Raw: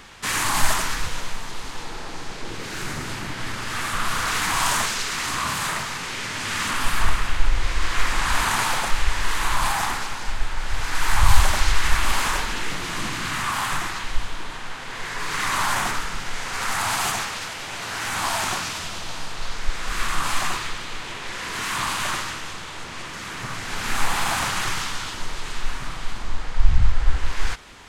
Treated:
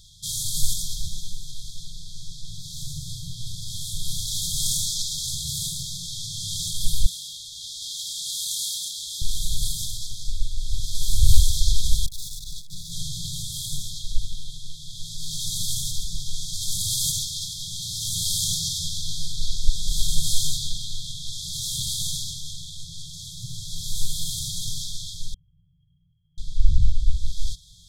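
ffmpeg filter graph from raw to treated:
ffmpeg -i in.wav -filter_complex "[0:a]asettb=1/sr,asplit=3[link_01][link_02][link_03];[link_01]atrim=end=7.064[link_04];[link_02]atrim=start=7.06:end=9.22,asetpts=PTS-STARTPTS,afade=type=in:duration=0.004:curve=qsin,afade=type=out:start_time=2.156:duration=0.004:curve=qsin,highpass=470,aecho=1:1:758:0.335,atrim=end_sample=95256[link_05];[link_03]atrim=start=9.216[link_06];[link_04][link_05]acrossfade=duration=0.004:curve1=hsin:curve2=qsin[link_07];[link_07][link_06]acrossfade=duration=0.004:curve1=qsin:curve2=hsin,asettb=1/sr,asplit=3[link_08][link_09][link_10];[link_08]atrim=end=12.064[link_11];[link_09]atrim=start=12.06:end=12.92,asetpts=PTS-STARTPTS,afade=type=in:duration=0.004:curve=qsin,afade=type=out:start_time=0.856:duration=0.004:curve=qsin,aeval=exprs='(tanh(28.2*val(0)+0.6)-tanh(0.6))/28.2':channel_layout=same,asuperstop=centerf=3100:order=20:qfactor=7.8[link_12];[link_10]atrim=start=12.916[link_13];[link_11][link_12]acrossfade=duration=0.004:curve1=hsin:curve2=qsin[link_14];[link_14][link_13]acrossfade=duration=0.004:curve1=qsin:curve2=hsin,asettb=1/sr,asplit=3[link_15][link_16][link_17];[link_15]atrim=end=25.344[link_18];[link_16]atrim=start=25.34:end=26.38,asetpts=PTS-STARTPTS,afade=type=in:duration=0.004:curve=qsin,afade=type=out:start_time=1.036:duration=0.004:curve=qsin,highpass=1400,lowpass=frequency=2900:width_type=q:width=0.5098,lowpass=frequency=2900:width_type=q:width=0.6013,lowpass=frequency=2900:width_type=q:width=0.9,lowpass=frequency=2900:width_type=q:width=2.563,afreqshift=-3400[link_19];[link_17]atrim=start=26.376[link_20];[link_18][link_19]acrossfade=duration=0.004:curve1=hsin:curve2=qsin[link_21];[link_21][link_20]acrossfade=duration=0.004:curve1=qsin:curve2=hsin,afftfilt=real='re*(1-between(b*sr/4096,180,3200))':imag='im*(1-between(b*sr/4096,180,3200))':win_size=4096:overlap=0.75,dynaudnorm=framelen=460:gausssize=21:maxgain=11.5dB,volume=-1dB" out.wav

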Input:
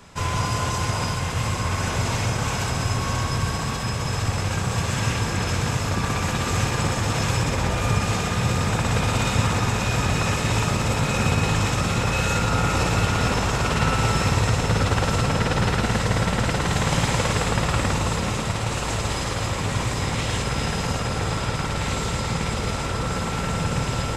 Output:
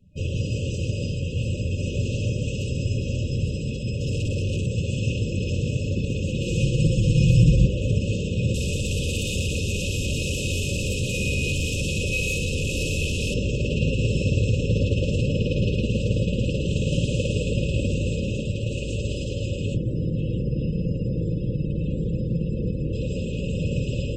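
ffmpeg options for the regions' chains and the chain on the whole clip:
ffmpeg -i in.wav -filter_complex "[0:a]asettb=1/sr,asplit=3[link_01][link_02][link_03];[link_01]atrim=end=4.014[link_04];[link_02]atrim=start=4.01:end=4.66,asetpts=PTS-STARTPTS,afade=type=in:duration=0.004:curve=qsin,afade=type=out:start_time=0.646:duration=0.004:curve=qsin,asoftclip=type=hard:threshold=-27dB,acontrast=41[link_05];[link_03]atrim=start=4.656[link_06];[link_04][link_05]acrossfade=duration=0.004:curve1=hsin:curve2=qsin[link_07];[link_07][link_06]acrossfade=duration=0.004:curve1=qsin:curve2=hsin,asettb=1/sr,asplit=3[link_08][link_09][link_10];[link_08]atrim=end=6.414[link_11];[link_09]atrim=start=6.41:end=7.66,asetpts=PTS-STARTPTS,afade=type=in:duration=0.004:curve=qsin,afade=type=out:start_time=1.246:duration=0.004:curve=qsin,aecho=1:1:6:0.72,atrim=end_sample=55125,asubboost=boost=9:cutoff=190[link_12];[link_10]atrim=start=7.656[link_13];[link_11][link_12]acrossfade=duration=0.004:curve1=hsin:curve2=qsin[link_14];[link_14][link_13]acrossfade=duration=0.004:curve1=qsin:curve2=hsin,asettb=1/sr,asplit=3[link_15][link_16][link_17];[link_15]atrim=end=8.544[link_18];[link_16]atrim=start=8.54:end=13.34,asetpts=PTS-STARTPTS,afade=type=in:duration=0.004:curve=qsin,afade=type=out:start_time=4.796:duration=0.004:curve=qsin,highshelf=frequency=2300:gain=11,afreqshift=-20,asoftclip=type=hard:threshold=-19dB[link_19];[link_17]atrim=start=13.336[link_20];[link_18][link_19]acrossfade=duration=0.004:curve1=hsin:curve2=qsin[link_21];[link_21][link_20]acrossfade=duration=0.004:curve1=qsin:curve2=hsin,asettb=1/sr,asplit=3[link_22][link_23][link_24];[link_22]atrim=end=19.744[link_25];[link_23]atrim=start=19.74:end=22.93,asetpts=PTS-STARTPTS,afade=type=in:duration=0.004:curve=qsin,afade=type=out:start_time=3.186:duration=0.004:curve=qsin,lowshelf=frequency=400:gain=11,aecho=1:1:6.1:0.38,atrim=end_sample=140679,acrossover=split=170|420|2500[link_26][link_27][link_28][link_29];[link_26]acompressor=threshold=-30dB:ratio=3[link_30];[link_27]acompressor=threshold=-29dB:ratio=3[link_31];[link_28]acompressor=threshold=-37dB:ratio=3[link_32];[link_29]acompressor=threshold=-45dB:ratio=3[link_33];[link_30][link_31][link_32][link_33]amix=inputs=4:normalize=0[link_34];[link_24]atrim=start=22.926[link_35];[link_25][link_34]acrossfade=duration=0.004:curve1=hsin:curve2=qsin[link_36];[link_36][link_35]acrossfade=duration=0.004:curve1=qsin:curve2=hsin,afftdn=noise_reduction=22:noise_floor=-38,highshelf=frequency=3100:width_type=q:width=1.5:gain=-7.5,afftfilt=real='re*(1-between(b*sr/4096,600,2500))':imag='im*(1-between(b*sr/4096,600,2500))':win_size=4096:overlap=0.75" out.wav

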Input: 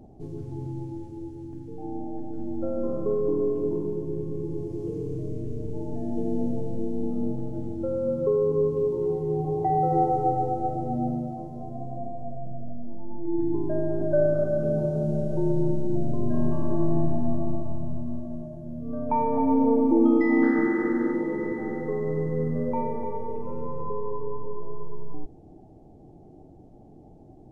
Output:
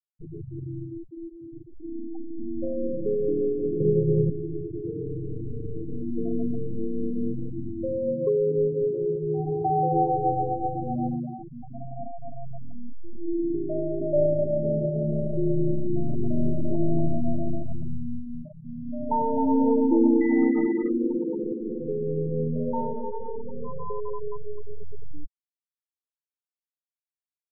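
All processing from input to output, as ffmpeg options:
ffmpeg -i in.wav -filter_complex "[0:a]asettb=1/sr,asplit=3[link_01][link_02][link_03];[link_01]atrim=end=3.804[link_04];[link_02]atrim=start=3.8:end=4.3,asetpts=PTS-STARTPTS,afade=type=in:duration=0.004:curve=qsin,afade=type=out:start_time=0.496:duration=0.004:curve=qsin,lowshelf=frequency=100:width_type=q:width=3:gain=-8.5,aecho=1:1:1.8:0.71,atrim=end_sample=22050,acontrast=71[link_05];[link_03]atrim=start=4.296[link_06];[link_04][link_05]acrossfade=duration=0.004:curve1=hsin:curve2=qsin[link_07];[link_07][link_06]acrossfade=duration=0.004:curve1=qsin:curve2=hsin,asettb=1/sr,asplit=3[link_08][link_09][link_10];[link_08]atrim=end=13.334[link_11];[link_09]atrim=start=13.33:end=14.16,asetpts=PTS-STARTPTS,afade=type=in:duration=0.004:curve=qsin,afade=type=out:start_time=0.826:duration=0.004:curve=qsin,lowshelf=frequency=160:gain=-7.5,asplit=2[link_12][link_13];[link_13]adelay=18,volume=-13.5dB[link_14];[link_12][link_14]amix=inputs=2:normalize=0,atrim=end_sample=36603[link_15];[link_10]atrim=start=14.156[link_16];[link_11][link_15]acrossfade=duration=0.004:curve1=hsin:curve2=qsin[link_17];[link_17][link_16]acrossfade=duration=0.004:curve1=qsin:curve2=hsin,lowpass=1700,afftfilt=real='re*gte(hypot(re,im),0.0891)':imag='im*gte(hypot(re,im),0.0891)':win_size=1024:overlap=0.75" out.wav

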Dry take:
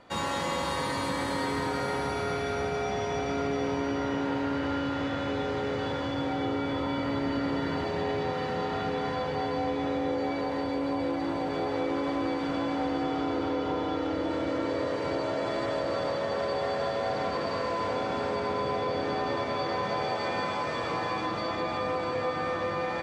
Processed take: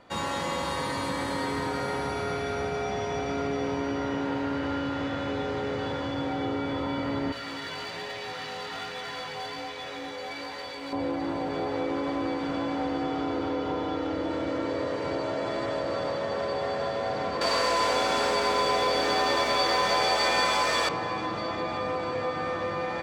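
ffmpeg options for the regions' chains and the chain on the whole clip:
ffmpeg -i in.wav -filter_complex "[0:a]asettb=1/sr,asplit=3[link_01][link_02][link_03];[link_01]atrim=end=7.324[link_04];[link_02]atrim=start=7.32:end=10.93,asetpts=PTS-STARTPTS,afade=type=in:duration=0.004:curve=qsin,afade=type=out:start_time=3.606:duration=0.004:curve=qsin,tiltshelf=frequency=1100:gain=-10,flanger=delay=16:depth=3.6:speed=1.2,volume=30.5dB,asoftclip=hard,volume=-30.5dB[link_05];[link_03]atrim=start=10.926[link_06];[link_04][link_05]acrossfade=duration=0.004:curve1=hsin:curve2=qsin[link_07];[link_07][link_06]acrossfade=duration=0.004:curve1=qsin:curve2=hsin,asettb=1/sr,asplit=3[link_08][link_09][link_10];[link_08]atrim=end=17.414[link_11];[link_09]atrim=start=17.41:end=20.89,asetpts=PTS-STARTPTS,afade=type=in:duration=0.004:curve=qsin,afade=type=out:start_time=3.476:duration=0.004:curve=qsin,acontrast=54,aemphasis=mode=production:type=riaa,aeval=exprs='val(0)+0.00355*(sin(2*PI*60*n/s)+sin(2*PI*2*60*n/s)/2+sin(2*PI*3*60*n/s)/3+sin(2*PI*4*60*n/s)/4+sin(2*PI*5*60*n/s)/5)':channel_layout=same[link_12];[link_10]atrim=start=20.886[link_13];[link_11][link_12]acrossfade=duration=0.004:curve1=hsin:curve2=qsin[link_14];[link_14][link_13]acrossfade=duration=0.004:curve1=qsin:curve2=hsin" out.wav

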